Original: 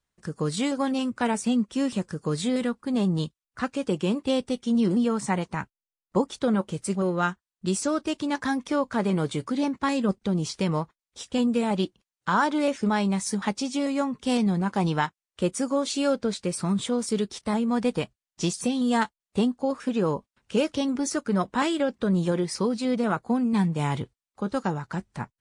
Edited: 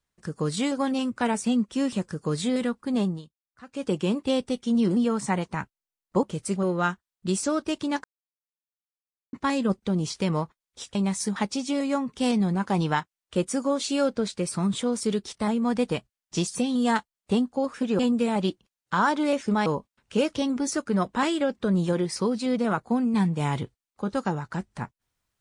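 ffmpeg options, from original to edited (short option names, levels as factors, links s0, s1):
-filter_complex "[0:a]asplit=9[s0][s1][s2][s3][s4][s5][s6][s7][s8];[s0]atrim=end=3.22,asetpts=PTS-STARTPTS,afade=t=out:st=3.01:d=0.21:silence=0.133352[s9];[s1]atrim=start=3.22:end=3.66,asetpts=PTS-STARTPTS,volume=0.133[s10];[s2]atrim=start=3.66:end=6.232,asetpts=PTS-STARTPTS,afade=t=in:d=0.21:silence=0.133352[s11];[s3]atrim=start=6.618:end=8.43,asetpts=PTS-STARTPTS,afade=t=out:st=1.808:d=0.004:c=hsin[s12];[s4]atrim=start=8.43:end=9.72,asetpts=PTS-STARTPTS,volume=0[s13];[s5]atrim=start=9.72:end=11.342,asetpts=PTS-STARTPTS,afade=t=in:d=0.004:c=hsin[s14];[s6]atrim=start=13.008:end=20.052[s15];[s7]atrim=start=11.338:end=13.012[s16];[s8]atrim=start=20.048[s17];[s9][s10][s11]concat=n=3:v=0:a=1[s18];[s12][s13][s14]concat=n=3:v=0:a=1[s19];[s18][s19]acrossfade=d=0.004:c1=hsin:c2=hsin[s20];[s20][s15]acrossfade=d=0.004:c1=hsin:c2=hsin[s21];[s21][s16]acrossfade=d=0.004:c1=hsin:c2=hsin[s22];[s22][s17]acrossfade=d=0.004:c1=hsin:c2=hsin"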